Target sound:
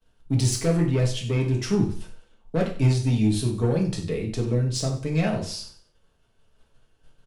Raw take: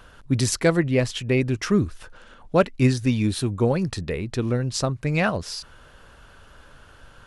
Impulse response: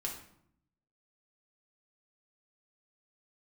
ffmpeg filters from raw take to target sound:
-filter_complex "[0:a]agate=range=-33dB:threshold=-37dB:ratio=3:detection=peak,equalizer=f=1.4k:w=1.1:g=-10,acrossover=split=150[a][b];[b]asoftclip=type=tanh:threshold=-17.5dB[c];[a][c]amix=inputs=2:normalize=0,aecho=1:1:95|190|285:0.211|0.0592|0.0166[d];[1:a]atrim=start_sample=2205,atrim=end_sample=3969[e];[d][e]afir=irnorm=-1:irlink=0"

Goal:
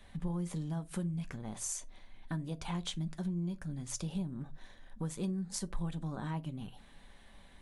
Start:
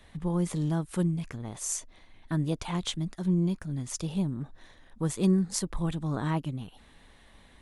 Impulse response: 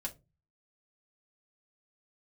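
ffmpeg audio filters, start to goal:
-filter_complex "[0:a]acompressor=threshold=-32dB:ratio=6,asplit=2[a][b];[1:a]atrim=start_sample=2205,atrim=end_sample=6615[c];[b][c]afir=irnorm=-1:irlink=0,volume=-3.5dB[d];[a][d]amix=inputs=2:normalize=0,volume=-6dB"

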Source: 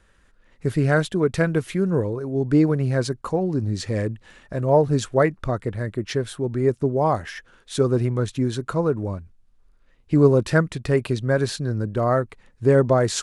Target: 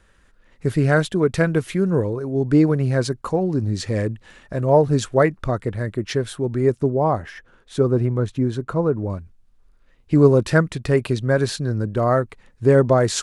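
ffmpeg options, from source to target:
-filter_complex "[0:a]asettb=1/sr,asplit=3[a][b][c];[a]atrim=end=6.904[d];[b]atrim=start=6.9:end=9.1,asetpts=PTS-STARTPTS,afade=t=in:d=0.004:c=qsin,afade=t=out:st=2.196:d=0.004:c=qsin,highshelf=f=2.1k:g=-10.5[e];[c]atrim=start=9.096[f];[d][e]acrossfade=d=0.004:c1=hsin:c2=qsin[g];[g][f]acrossfade=d=0.004:c1=qsin:c2=hsin,volume=2dB"

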